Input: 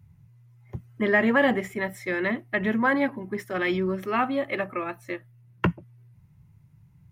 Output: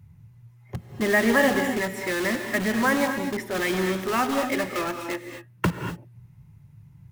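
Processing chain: in parallel at -5 dB: wrapped overs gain 26 dB; on the sum: non-linear reverb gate 0.27 s rising, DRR 5.5 dB

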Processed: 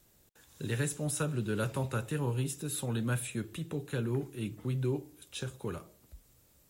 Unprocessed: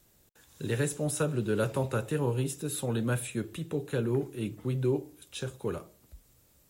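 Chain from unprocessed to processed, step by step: dynamic EQ 490 Hz, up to -6 dB, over -42 dBFS, Q 0.92; gain -1 dB

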